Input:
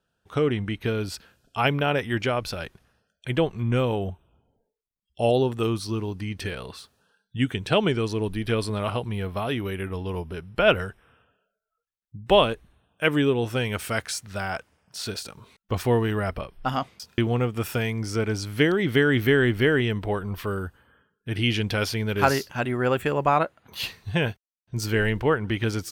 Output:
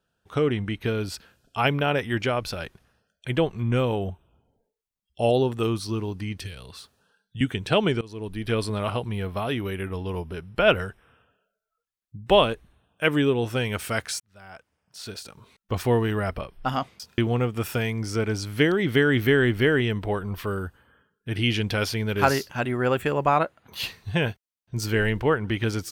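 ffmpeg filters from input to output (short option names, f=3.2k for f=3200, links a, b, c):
-filter_complex "[0:a]asettb=1/sr,asplit=3[a][b][c];[a]atrim=end=6.384[d];[b]atrim=start=6.38:end=7.41,asetpts=PTS-STARTPTS,afade=t=in:d=0.004:c=qsin,afade=t=out:st=1.026:d=0.004:c=qsin,acrossover=split=130|3000[e][f][g];[f]acompressor=threshold=-44dB:ratio=6:attack=3.2:release=140:knee=2.83:detection=peak[h];[e][h][g]amix=inputs=3:normalize=0[i];[c]atrim=start=7.406[j];[d][i]acrossfade=d=0.004:c1=hsin:c2=qsin[k];[k][j]acrossfade=d=0.004:c1=qsin:c2=hsin,asplit=3[l][m][n];[l]atrim=end=8.01,asetpts=PTS-STARTPTS,afade=t=out:st=8.006:d=0.004:c=hsin:silence=0.0944061[o];[m]atrim=start=8.01:end=14.2,asetpts=PTS-STARTPTS,afade=t=in:d=0.55:silence=0.0944061,afade=t=out:st=6.186:d=0.004:c=hsin[p];[n]atrim=start=14.2,asetpts=PTS-STARTPTS,afade=t=in:d=1.65[q];[o][p][q]concat=n=3:v=0:a=1"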